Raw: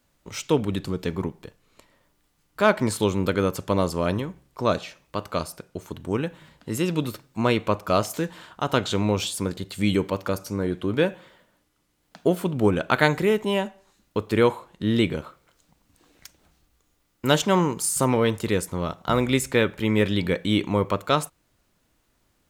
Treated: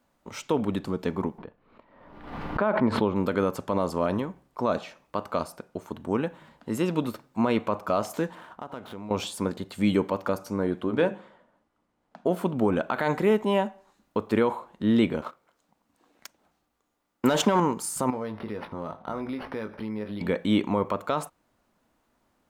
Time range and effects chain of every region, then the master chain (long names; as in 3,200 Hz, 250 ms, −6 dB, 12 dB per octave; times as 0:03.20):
0:01.38–0:03.16: high-frequency loss of the air 380 metres + background raised ahead of every attack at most 55 dB per second
0:08.35–0:09.11: running median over 9 samples + downward compressor 4 to 1, threshold −37 dBFS
0:10.84–0:12.29: low-pass filter 11,000 Hz 24 dB per octave + mains-hum notches 50/100/150/200/250/300/350/400/450 Hz + one half of a high-frequency compander decoder only
0:15.22–0:17.60: low-shelf EQ 110 Hz −9 dB + leveller curve on the samples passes 2
0:18.10–0:20.21: double-tracking delay 19 ms −7.5 dB + downward compressor 5 to 1, threshold −30 dBFS + linearly interpolated sample-rate reduction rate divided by 6×
whole clip: parametric band 830 Hz +11.5 dB 2.2 octaves; brickwall limiter −6.5 dBFS; parametric band 230 Hz +8 dB 0.65 octaves; level −8 dB